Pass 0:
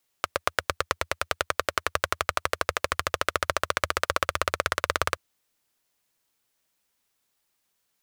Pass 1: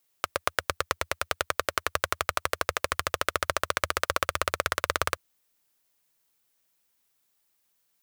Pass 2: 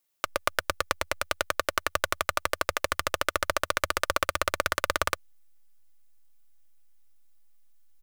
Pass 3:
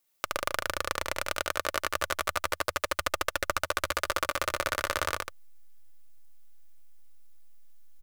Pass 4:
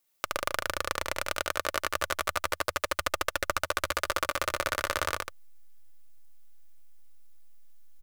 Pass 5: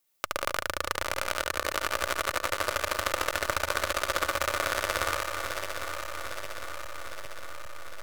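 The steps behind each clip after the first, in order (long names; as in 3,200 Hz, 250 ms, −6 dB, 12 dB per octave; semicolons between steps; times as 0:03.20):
high-shelf EQ 11,000 Hz +7.5 dB; level −1.5 dB
comb filter 3.4 ms, depth 37%; in parallel at −3.5 dB: slack as between gear wheels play −28.5 dBFS; on the sum: level −4.5 dB
downward compressor 2 to 1, threshold −32 dBFS, peak gain reduction 7.5 dB; on a send: loudspeakers that aren't time-aligned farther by 24 metres −2 dB, 51 metres −7 dB; on the sum: level +1.5 dB
no processing that can be heard
feedback delay that plays each chunk backwards 403 ms, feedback 80%, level −7 dB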